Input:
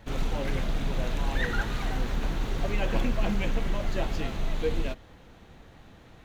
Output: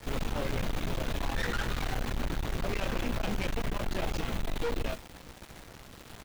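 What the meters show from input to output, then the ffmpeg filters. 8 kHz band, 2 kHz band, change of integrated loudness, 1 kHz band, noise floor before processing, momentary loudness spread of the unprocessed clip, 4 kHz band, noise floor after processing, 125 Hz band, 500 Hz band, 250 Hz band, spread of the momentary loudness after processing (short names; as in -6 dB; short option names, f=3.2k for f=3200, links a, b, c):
n/a, -2.0 dB, -3.0 dB, -1.0 dB, -52 dBFS, 4 LU, 0.0 dB, -51 dBFS, -3.0 dB, -2.5 dB, -3.0 dB, 16 LU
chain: -filter_complex "[0:a]asplit=2[a][b];[b]adelay=17,volume=-7dB[c];[a][c]amix=inputs=2:normalize=0,acrusher=bits=7:mix=0:aa=0.000001,aeval=exprs='(tanh(50.1*val(0)+0.75)-tanh(0.75))/50.1':c=same,volume=5dB"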